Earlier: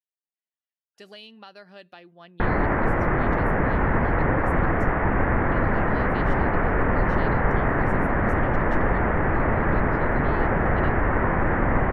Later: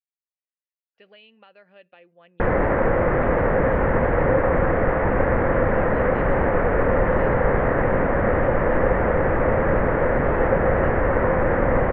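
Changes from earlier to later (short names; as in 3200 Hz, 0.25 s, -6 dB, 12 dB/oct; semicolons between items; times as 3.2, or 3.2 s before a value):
speech: add ladder low-pass 2900 Hz, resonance 50%; master: add bell 520 Hz +12 dB 0.36 oct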